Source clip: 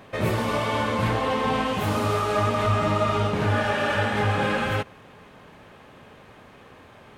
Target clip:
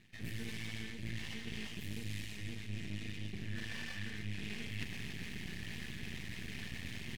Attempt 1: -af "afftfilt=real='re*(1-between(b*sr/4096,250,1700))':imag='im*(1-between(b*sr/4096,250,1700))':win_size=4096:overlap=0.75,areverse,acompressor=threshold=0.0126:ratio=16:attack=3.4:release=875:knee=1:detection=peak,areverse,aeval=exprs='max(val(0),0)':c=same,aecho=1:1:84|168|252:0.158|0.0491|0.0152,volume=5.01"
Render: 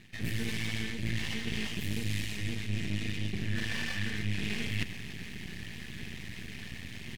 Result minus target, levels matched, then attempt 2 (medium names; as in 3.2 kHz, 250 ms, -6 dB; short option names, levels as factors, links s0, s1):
compression: peak gain reduction -9 dB
-af "afftfilt=real='re*(1-between(b*sr/4096,250,1700))':imag='im*(1-between(b*sr/4096,250,1700))':win_size=4096:overlap=0.75,areverse,acompressor=threshold=0.00422:ratio=16:attack=3.4:release=875:knee=1:detection=peak,areverse,aeval=exprs='max(val(0),0)':c=same,aecho=1:1:84|168|252:0.158|0.0491|0.0152,volume=5.01"